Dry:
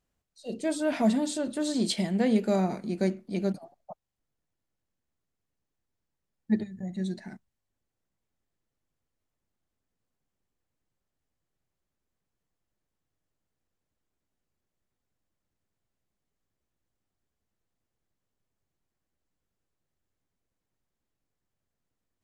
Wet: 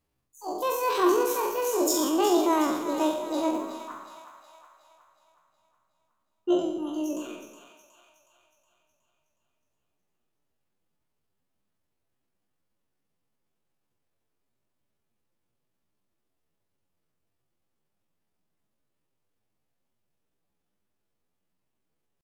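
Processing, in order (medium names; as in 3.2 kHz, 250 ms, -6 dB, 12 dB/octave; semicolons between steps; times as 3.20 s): spectral sustain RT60 0.79 s; pitch shift +8.5 st; two-band feedback delay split 760 Hz, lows 107 ms, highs 367 ms, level -9.5 dB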